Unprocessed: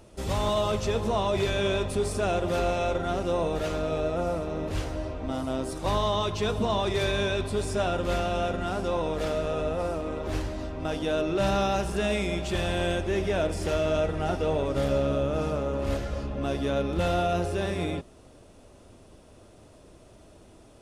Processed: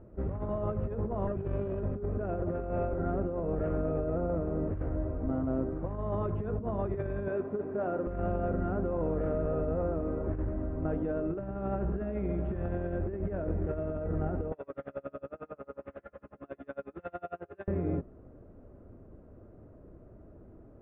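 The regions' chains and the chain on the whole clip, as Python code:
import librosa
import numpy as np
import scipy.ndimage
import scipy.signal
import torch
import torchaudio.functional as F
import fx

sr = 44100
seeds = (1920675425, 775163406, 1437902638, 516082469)

y = fx.chain(x, sr, fx.lower_of_two(delay_ms=0.36),
    fx.peak_eq(hz=2100.0, db=-9.0, octaves=0.25), at=(1.27, 1.83))
y = fx.chain(y, sr, fx.highpass(hz=250.0, slope=12),
    fx.high_shelf(hz=3900.0, db=-7.0), at=(7.28, 8.07))
y = fx.chain(y, sr, fx.weighting(curve='ITU-R 468'),
    fx.tremolo_db(hz=11.0, depth_db=34), at=(14.52, 17.68))
y = scipy.signal.sosfilt(scipy.signal.cheby2(4, 60, 4500.0, 'lowpass', fs=sr, output='sos'), y)
y = fx.peak_eq(y, sr, hz=930.0, db=-11.0, octaves=1.2)
y = fx.over_compress(y, sr, threshold_db=-31.0, ratio=-0.5)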